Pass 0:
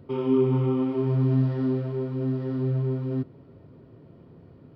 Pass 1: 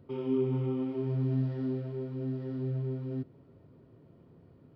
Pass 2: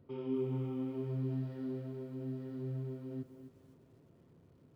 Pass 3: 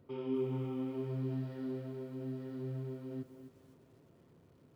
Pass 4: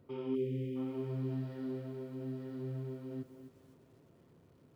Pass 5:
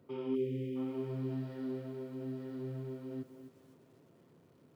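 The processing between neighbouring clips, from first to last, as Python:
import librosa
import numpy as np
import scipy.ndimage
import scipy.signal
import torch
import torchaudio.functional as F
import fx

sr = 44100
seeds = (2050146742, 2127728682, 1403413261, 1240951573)

y1 = fx.dynamic_eq(x, sr, hz=1100.0, q=2.6, threshold_db=-52.0, ratio=4.0, max_db=-7)
y1 = y1 * 10.0 ** (-7.5 / 20.0)
y2 = fx.echo_crushed(y1, sr, ms=256, feedback_pct=35, bits=10, wet_db=-11)
y2 = y2 * 10.0 ** (-6.0 / 20.0)
y3 = fx.low_shelf(y2, sr, hz=360.0, db=-5.5)
y3 = y3 * 10.0 ** (3.5 / 20.0)
y4 = fx.spec_erase(y3, sr, start_s=0.35, length_s=0.41, low_hz=600.0, high_hz=1800.0)
y5 = scipy.signal.sosfilt(scipy.signal.butter(2, 130.0, 'highpass', fs=sr, output='sos'), y4)
y5 = y5 * 10.0 ** (1.0 / 20.0)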